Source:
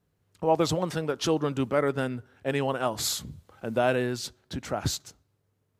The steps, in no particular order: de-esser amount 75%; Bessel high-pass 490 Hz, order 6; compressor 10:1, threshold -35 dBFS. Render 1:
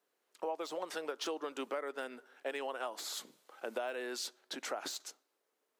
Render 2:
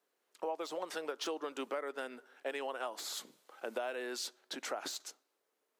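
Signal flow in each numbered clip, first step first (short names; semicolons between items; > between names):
de-esser > Bessel high-pass > compressor; Bessel high-pass > de-esser > compressor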